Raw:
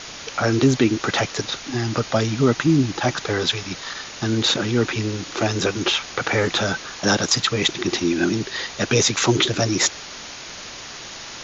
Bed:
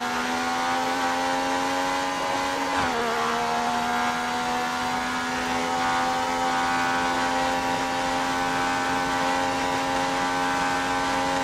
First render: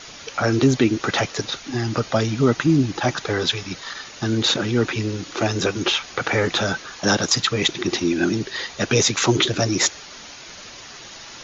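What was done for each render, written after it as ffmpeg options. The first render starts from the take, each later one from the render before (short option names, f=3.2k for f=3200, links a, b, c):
-af "afftdn=nr=6:nf=-36"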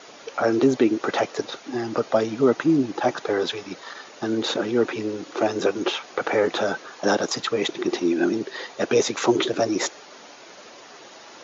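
-af "highpass=470,tiltshelf=f=920:g=9.5"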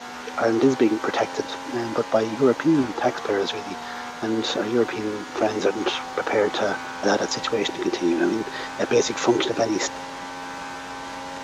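-filter_complex "[1:a]volume=-10dB[a];[0:a][a]amix=inputs=2:normalize=0"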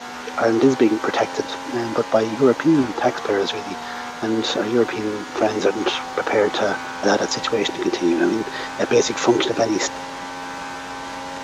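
-af "volume=3dB"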